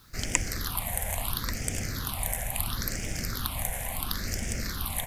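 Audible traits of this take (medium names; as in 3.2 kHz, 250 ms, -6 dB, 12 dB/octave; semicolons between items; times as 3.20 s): phasing stages 6, 0.73 Hz, lowest notch 320–1100 Hz; a quantiser's noise floor 10-bit, dither none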